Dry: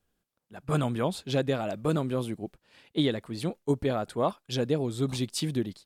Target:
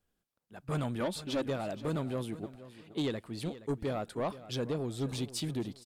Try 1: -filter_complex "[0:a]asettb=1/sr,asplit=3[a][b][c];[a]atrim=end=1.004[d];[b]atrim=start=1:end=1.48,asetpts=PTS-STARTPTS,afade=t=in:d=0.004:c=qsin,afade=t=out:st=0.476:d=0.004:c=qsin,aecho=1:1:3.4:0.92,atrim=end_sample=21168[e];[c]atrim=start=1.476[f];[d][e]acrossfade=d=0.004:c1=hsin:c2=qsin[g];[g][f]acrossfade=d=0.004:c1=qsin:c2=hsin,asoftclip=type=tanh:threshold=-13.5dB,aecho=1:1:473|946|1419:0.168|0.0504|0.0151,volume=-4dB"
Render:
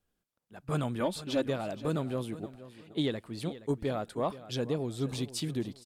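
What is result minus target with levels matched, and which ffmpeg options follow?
soft clip: distortion -12 dB
-filter_complex "[0:a]asettb=1/sr,asplit=3[a][b][c];[a]atrim=end=1.004[d];[b]atrim=start=1:end=1.48,asetpts=PTS-STARTPTS,afade=t=in:d=0.004:c=qsin,afade=t=out:st=0.476:d=0.004:c=qsin,aecho=1:1:3.4:0.92,atrim=end_sample=21168[e];[c]atrim=start=1.476[f];[d][e]acrossfade=d=0.004:c1=hsin:c2=qsin[g];[g][f]acrossfade=d=0.004:c1=qsin:c2=hsin,asoftclip=type=tanh:threshold=-22.5dB,aecho=1:1:473|946|1419:0.168|0.0504|0.0151,volume=-4dB"

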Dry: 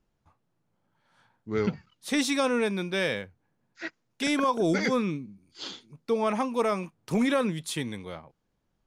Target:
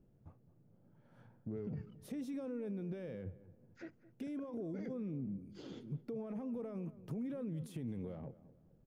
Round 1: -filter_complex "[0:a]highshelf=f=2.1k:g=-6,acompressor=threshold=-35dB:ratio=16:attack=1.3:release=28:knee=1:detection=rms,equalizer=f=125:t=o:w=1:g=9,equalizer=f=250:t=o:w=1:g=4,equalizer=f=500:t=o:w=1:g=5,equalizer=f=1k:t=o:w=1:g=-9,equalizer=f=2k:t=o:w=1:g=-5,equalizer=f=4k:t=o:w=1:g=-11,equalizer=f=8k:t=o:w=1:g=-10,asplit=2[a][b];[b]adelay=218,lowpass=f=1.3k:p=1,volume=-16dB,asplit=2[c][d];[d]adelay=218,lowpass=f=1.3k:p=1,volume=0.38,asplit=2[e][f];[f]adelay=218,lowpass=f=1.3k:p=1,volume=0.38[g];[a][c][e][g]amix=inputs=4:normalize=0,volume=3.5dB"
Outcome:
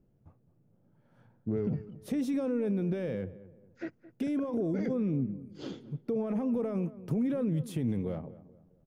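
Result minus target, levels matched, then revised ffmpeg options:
compressor: peak gain reduction -11 dB
-filter_complex "[0:a]highshelf=f=2.1k:g=-6,acompressor=threshold=-47dB:ratio=16:attack=1.3:release=28:knee=1:detection=rms,equalizer=f=125:t=o:w=1:g=9,equalizer=f=250:t=o:w=1:g=4,equalizer=f=500:t=o:w=1:g=5,equalizer=f=1k:t=o:w=1:g=-9,equalizer=f=2k:t=o:w=1:g=-5,equalizer=f=4k:t=o:w=1:g=-11,equalizer=f=8k:t=o:w=1:g=-10,asplit=2[a][b];[b]adelay=218,lowpass=f=1.3k:p=1,volume=-16dB,asplit=2[c][d];[d]adelay=218,lowpass=f=1.3k:p=1,volume=0.38,asplit=2[e][f];[f]adelay=218,lowpass=f=1.3k:p=1,volume=0.38[g];[a][c][e][g]amix=inputs=4:normalize=0,volume=3.5dB"

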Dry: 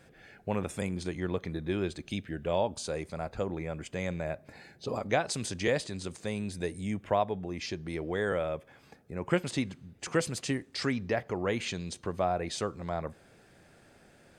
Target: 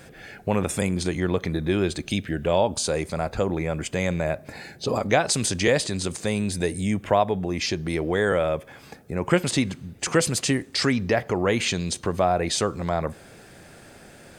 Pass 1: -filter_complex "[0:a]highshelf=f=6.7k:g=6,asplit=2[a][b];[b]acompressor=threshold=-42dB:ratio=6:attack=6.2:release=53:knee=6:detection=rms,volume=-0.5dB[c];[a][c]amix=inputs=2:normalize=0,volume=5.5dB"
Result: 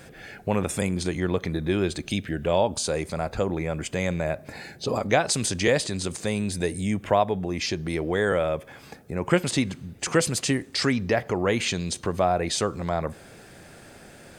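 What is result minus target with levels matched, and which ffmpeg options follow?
compressor: peak gain reduction +6 dB
-filter_complex "[0:a]highshelf=f=6.7k:g=6,asplit=2[a][b];[b]acompressor=threshold=-35dB:ratio=6:attack=6.2:release=53:knee=6:detection=rms,volume=-0.5dB[c];[a][c]amix=inputs=2:normalize=0,volume=5.5dB"

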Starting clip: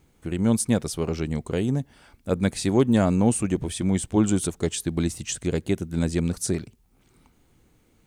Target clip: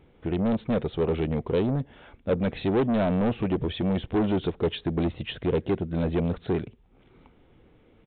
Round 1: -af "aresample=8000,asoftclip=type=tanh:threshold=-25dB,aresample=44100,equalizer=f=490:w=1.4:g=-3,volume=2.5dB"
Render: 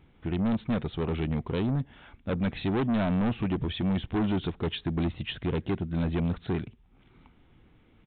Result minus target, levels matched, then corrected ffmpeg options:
500 Hz band -5.0 dB
-af "aresample=8000,asoftclip=type=tanh:threshold=-25dB,aresample=44100,equalizer=f=490:w=1.4:g=6.5,volume=2.5dB"

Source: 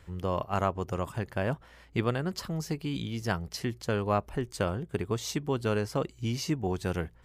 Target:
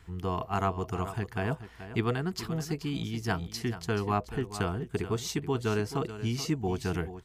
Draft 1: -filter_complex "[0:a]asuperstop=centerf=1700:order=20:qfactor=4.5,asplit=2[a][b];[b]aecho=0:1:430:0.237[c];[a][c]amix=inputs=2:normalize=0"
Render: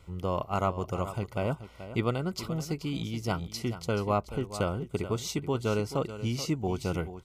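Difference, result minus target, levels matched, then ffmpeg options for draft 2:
2000 Hz band -3.0 dB
-filter_complex "[0:a]asuperstop=centerf=560:order=20:qfactor=4.5,asplit=2[a][b];[b]aecho=0:1:430:0.237[c];[a][c]amix=inputs=2:normalize=0"

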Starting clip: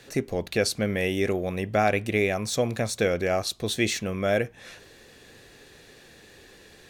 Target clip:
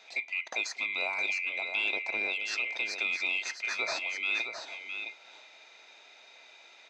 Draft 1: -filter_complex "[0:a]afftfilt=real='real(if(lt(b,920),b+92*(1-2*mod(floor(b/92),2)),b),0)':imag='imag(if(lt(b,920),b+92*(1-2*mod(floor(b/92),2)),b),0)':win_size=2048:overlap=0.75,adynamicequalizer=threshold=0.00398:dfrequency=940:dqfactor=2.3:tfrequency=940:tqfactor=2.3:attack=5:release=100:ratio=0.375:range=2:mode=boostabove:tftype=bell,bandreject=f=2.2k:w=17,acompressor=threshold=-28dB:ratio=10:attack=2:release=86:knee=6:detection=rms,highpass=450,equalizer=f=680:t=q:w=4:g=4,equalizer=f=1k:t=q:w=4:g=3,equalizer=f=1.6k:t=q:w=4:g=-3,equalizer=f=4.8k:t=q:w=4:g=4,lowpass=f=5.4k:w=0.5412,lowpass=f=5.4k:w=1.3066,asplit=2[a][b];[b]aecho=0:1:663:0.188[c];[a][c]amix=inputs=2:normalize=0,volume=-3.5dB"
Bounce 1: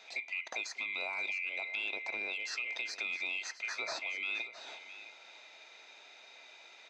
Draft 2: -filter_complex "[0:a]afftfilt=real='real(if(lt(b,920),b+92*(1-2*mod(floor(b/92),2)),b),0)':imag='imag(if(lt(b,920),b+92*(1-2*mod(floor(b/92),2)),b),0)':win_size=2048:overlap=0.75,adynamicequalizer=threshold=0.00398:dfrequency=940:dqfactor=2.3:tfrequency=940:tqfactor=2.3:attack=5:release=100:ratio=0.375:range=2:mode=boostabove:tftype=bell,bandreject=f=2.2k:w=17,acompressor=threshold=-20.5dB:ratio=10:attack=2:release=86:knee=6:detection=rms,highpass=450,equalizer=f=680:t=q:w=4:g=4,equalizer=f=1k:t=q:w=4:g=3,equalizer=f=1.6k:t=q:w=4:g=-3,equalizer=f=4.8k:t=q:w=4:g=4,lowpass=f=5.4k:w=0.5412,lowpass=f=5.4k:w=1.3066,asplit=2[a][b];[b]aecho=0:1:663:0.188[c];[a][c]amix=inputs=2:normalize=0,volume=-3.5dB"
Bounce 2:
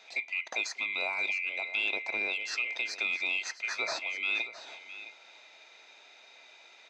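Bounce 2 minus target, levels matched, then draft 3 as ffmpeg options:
echo-to-direct -7 dB
-filter_complex "[0:a]afftfilt=real='real(if(lt(b,920),b+92*(1-2*mod(floor(b/92),2)),b),0)':imag='imag(if(lt(b,920),b+92*(1-2*mod(floor(b/92),2)),b),0)':win_size=2048:overlap=0.75,adynamicequalizer=threshold=0.00398:dfrequency=940:dqfactor=2.3:tfrequency=940:tqfactor=2.3:attack=5:release=100:ratio=0.375:range=2:mode=boostabove:tftype=bell,bandreject=f=2.2k:w=17,acompressor=threshold=-20.5dB:ratio=10:attack=2:release=86:knee=6:detection=rms,highpass=450,equalizer=f=680:t=q:w=4:g=4,equalizer=f=1k:t=q:w=4:g=3,equalizer=f=1.6k:t=q:w=4:g=-3,equalizer=f=4.8k:t=q:w=4:g=4,lowpass=f=5.4k:w=0.5412,lowpass=f=5.4k:w=1.3066,asplit=2[a][b];[b]aecho=0:1:663:0.422[c];[a][c]amix=inputs=2:normalize=0,volume=-3.5dB"

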